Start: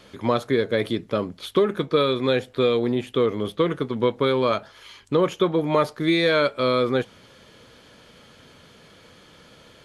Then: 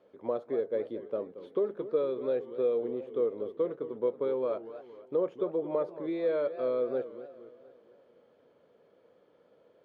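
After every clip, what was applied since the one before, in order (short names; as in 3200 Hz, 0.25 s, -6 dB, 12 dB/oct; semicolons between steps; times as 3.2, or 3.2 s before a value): band-pass 500 Hz, Q 2.1; warbling echo 0.235 s, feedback 49%, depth 212 cents, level -13.5 dB; gain -6.5 dB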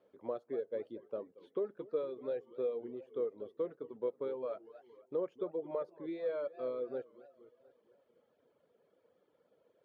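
reverb removal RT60 0.88 s; gain -6.5 dB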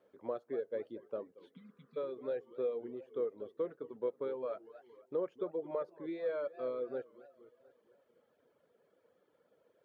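spectral repair 1.57–1.95, 270–1900 Hz before; bell 1600 Hz +4 dB 0.81 oct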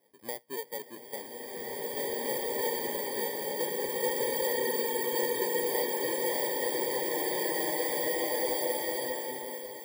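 FFT order left unsorted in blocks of 32 samples; bloom reverb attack 2.22 s, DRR -8.5 dB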